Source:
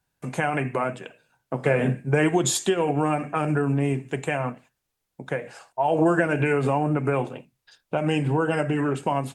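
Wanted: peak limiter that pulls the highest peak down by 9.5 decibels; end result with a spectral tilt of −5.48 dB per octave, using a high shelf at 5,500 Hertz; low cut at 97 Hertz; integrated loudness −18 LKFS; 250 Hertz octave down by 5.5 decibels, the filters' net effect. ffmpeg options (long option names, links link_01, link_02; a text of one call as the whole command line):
ffmpeg -i in.wav -af "highpass=97,equalizer=frequency=250:width_type=o:gain=-8,highshelf=frequency=5500:gain=-6.5,volume=12dB,alimiter=limit=-7dB:level=0:latency=1" out.wav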